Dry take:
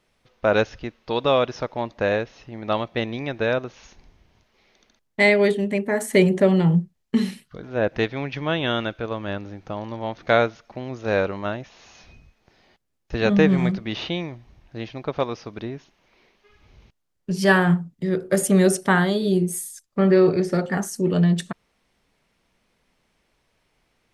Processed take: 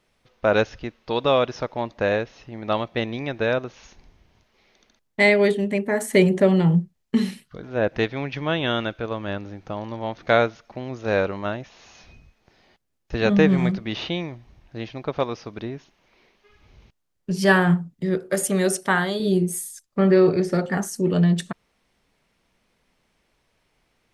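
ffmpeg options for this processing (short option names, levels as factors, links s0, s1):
-filter_complex "[0:a]asettb=1/sr,asplit=3[s0][s1][s2];[s0]atrim=end=18.174[s3];[s1]atrim=start=18.17:end=19.2,asetpts=PTS-STARTPTS,afade=t=in:d=0.004:c=qsin,afade=t=out:st=1.026:d=0.004:c=qsin,lowshelf=f=370:g=-8[s4];[s2]atrim=start=19.196[s5];[s3][s4]acrossfade=d=0.004:c1=hsin:c2=qsin[s6];[s6][s5]acrossfade=d=0.004:c1=qsin:c2=hsin"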